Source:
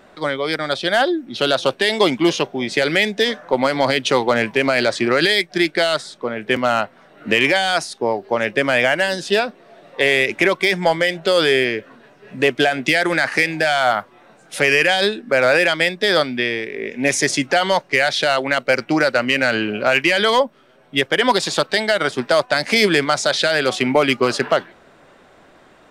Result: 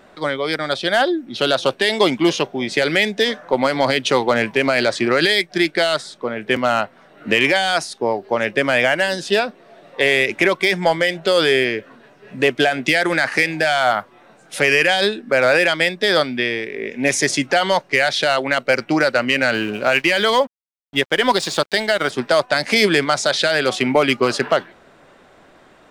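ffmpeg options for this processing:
-filter_complex "[0:a]asettb=1/sr,asplit=3[s0][s1][s2];[s0]atrim=end=19.544[s3];[s1]atrim=start=19.54:end=22.1,asetpts=PTS-STARTPTS,afade=t=in:d=0.004:c=qsin,afade=t=out:st=2.556:d=0.004:c=qsin,aeval=exprs='sgn(val(0))*max(abs(val(0))-0.0119,0)':c=same[s4];[s2]atrim=start=22.096[s5];[s3][s4]acrossfade=d=0.004:c1=hsin:c2=qsin[s6];[s6][s5]acrossfade=d=0.004:c1=qsin:c2=hsin"

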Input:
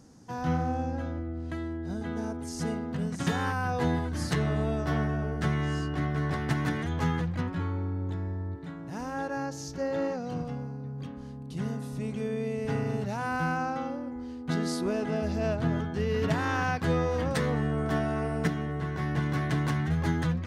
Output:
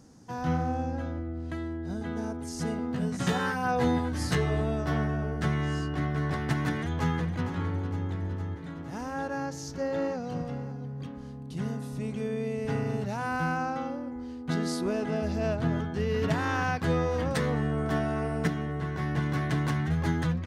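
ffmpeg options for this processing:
-filter_complex "[0:a]asettb=1/sr,asplit=3[s0][s1][s2];[s0]atrim=end=2.774[s3];[s1]atrim=start=2.77:end=4.61,asetpts=PTS-STARTPTS,afade=t=in:d=0.004:c=qsin,afade=t=out:st=1.836:d=0.004:c=qsin,asplit=2[s4][s5];[s5]adelay=16,volume=0.708[s6];[s4][s6]amix=inputs=2:normalize=0,atrim=end_sample=81144[s7];[s2]atrim=start=4.606[s8];[s3][s7]acrossfade=d=0.004:c1=hsin:c2=qsin[s9];[s9][s8]acrossfade=d=0.004:c1=qsin:c2=hsin,asplit=2[s10][s11];[s11]afade=t=in:st=6.72:d=0.01,afade=t=out:st=7.45:d=0.01,aecho=0:1:460|920|1380|1840|2300|2760|3220|3680|4140|4600:0.298538|0.208977|0.146284|0.102399|0.071679|0.0501753|0.0351227|0.0245859|0.0172101|0.0120471[s12];[s10][s12]amix=inputs=2:normalize=0,asplit=2[s13][s14];[s14]afade=t=in:st=9.73:d=0.01,afade=t=out:st=10.3:d=0.01,aecho=0:1:550|1100:0.16788|0.0251821[s15];[s13][s15]amix=inputs=2:normalize=0"

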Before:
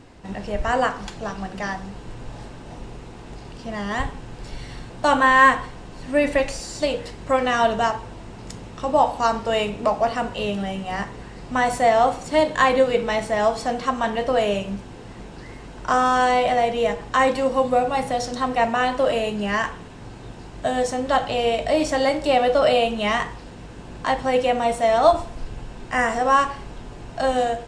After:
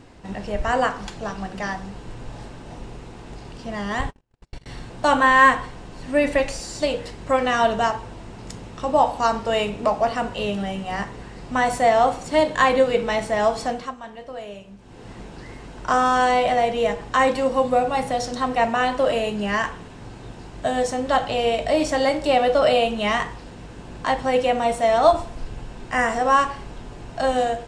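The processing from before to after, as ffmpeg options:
-filter_complex "[0:a]asettb=1/sr,asplit=3[s0][s1][s2];[s0]atrim=end=4.014[s3];[s1]atrim=start=4.01:end=4.66,asetpts=PTS-STARTPTS,afade=t=in:d=0.004:c=qsin,afade=t=out:st=0.646:d=0.004:c=qsin,agate=range=0.00794:threshold=0.0282:ratio=16:release=100:detection=peak[s4];[s2]atrim=start=4.656[s5];[s3][s4]acrossfade=d=0.004:c1=hsin:c2=qsin[s6];[s6][s5]acrossfade=d=0.004:c1=qsin:c2=hsin,asplit=3[s7][s8][s9];[s7]atrim=end=13.96,asetpts=PTS-STARTPTS,afade=t=out:st=13.65:d=0.31:silence=0.188365[s10];[s8]atrim=start=13.96:end=14.78,asetpts=PTS-STARTPTS,volume=0.188[s11];[s9]atrim=start=14.78,asetpts=PTS-STARTPTS,afade=t=in:d=0.31:silence=0.188365[s12];[s10][s11][s12]concat=n=3:v=0:a=1"

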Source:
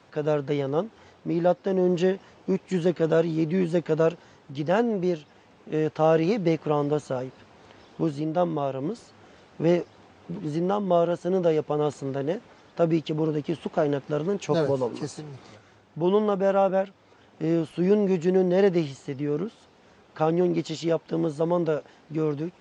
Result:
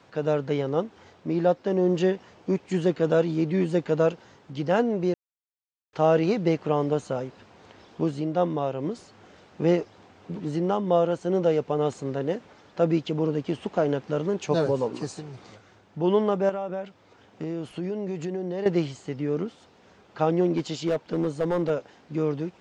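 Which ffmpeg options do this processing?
-filter_complex "[0:a]asettb=1/sr,asplit=3[s0][s1][s2];[s0]atrim=end=16.494[s3];[s1]atrim=start=16.49:end=18.66,asetpts=PTS-STARTPTS,afade=t=in:d=0.004:c=qsin,afade=t=out:st=2.166:d=0.004:c=qsin,acompressor=threshold=0.0447:ratio=6:attack=3.2:release=140:knee=1:detection=peak[s4];[s2]atrim=start=18.656[s5];[s3][s4]acrossfade=d=0.004:c1=hsin:c2=qsin[s6];[s6][s5]acrossfade=d=0.004:c1=qsin:c2=hsin,asettb=1/sr,asplit=3[s7][s8][s9];[s7]atrim=end=20.544[s10];[s8]atrim=start=20.54:end=21.7,asetpts=PTS-STARTPTS,afade=t=in:d=0.004:c=qsin,afade=t=out:st=1.156:d=0.004:c=qsin,asoftclip=type=hard:threshold=0.112[s11];[s9]atrim=start=21.696[s12];[s10][s11]acrossfade=d=0.004:c1=hsin:c2=qsin[s13];[s13][s12]acrossfade=d=0.004:c1=qsin:c2=hsin,asplit=3[s14][s15][s16];[s14]atrim=end=5.14,asetpts=PTS-STARTPTS,afade=t=out:st=5.136:d=0.004:c=hsin[s17];[s15]atrim=start=5.14:end=5.93,asetpts=PTS-STARTPTS,volume=0[s18];[s16]atrim=start=5.93,asetpts=PTS-STARTPTS,afade=t=in:d=0.004:c=hsin[s19];[s17][s18][s19]concat=n=3:v=0:a=1"

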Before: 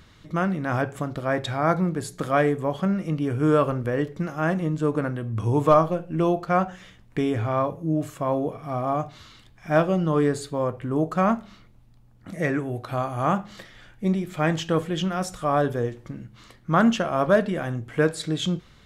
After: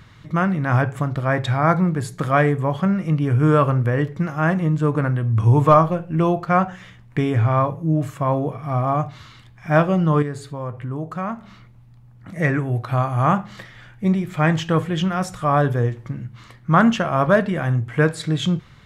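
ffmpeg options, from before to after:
-filter_complex "[0:a]asettb=1/sr,asplit=3[s0][s1][s2];[s0]atrim=end=10.224[s3];[s1]atrim=start=10.22:end=12.36,asetpts=PTS-STARTPTS,afade=t=in:d=0.004:c=qsin,afade=t=out:st=2.136:d=0.004:c=qsin,acompressor=threshold=0.00631:ratio=1.5:attack=3.2:release=140:knee=1:detection=peak[s4];[s2]atrim=start=12.356[s5];[s3][s4]acrossfade=d=0.004:c1=hsin:c2=qsin[s6];[s6][s5]acrossfade=d=0.004:c1=qsin:c2=hsin,equalizer=f=125:t=o:w=1:g=11,equalizer=f=1000:t=o:w=1:g=5,equalizer=f=2000:t=o:w=1:g=5"

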